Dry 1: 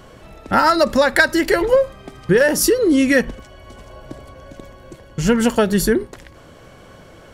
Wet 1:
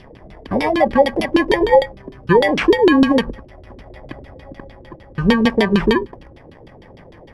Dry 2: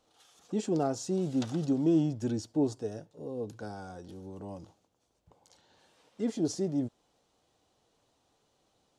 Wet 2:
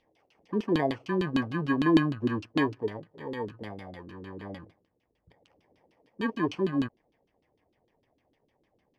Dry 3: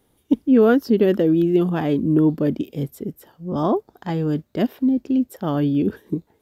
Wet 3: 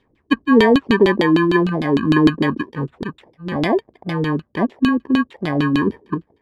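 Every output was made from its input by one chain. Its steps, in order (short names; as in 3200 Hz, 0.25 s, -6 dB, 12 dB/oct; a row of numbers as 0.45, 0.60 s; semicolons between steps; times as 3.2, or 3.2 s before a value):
FFT order left unsorted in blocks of 32 samples; LFO low-pass saw down 6.6 Hz 280–3700 Hz; gain +1 dB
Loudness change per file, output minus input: +0.5, +3.0, +2.5 LU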